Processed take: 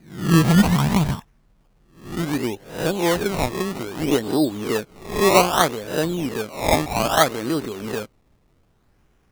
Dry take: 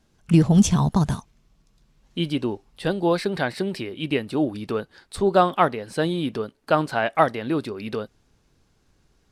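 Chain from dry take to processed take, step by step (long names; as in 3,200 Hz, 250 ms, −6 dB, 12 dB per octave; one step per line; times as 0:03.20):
peak hold with a rise ahead of every peak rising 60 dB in 0.50 s
0:03.91–0:05.41: dynamic equaliser 330 Hz, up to +3 dB, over −32 dBFS, Q 1.1
sample-and-hold swept by an LFO 20×, swing 100% 0.63 Hz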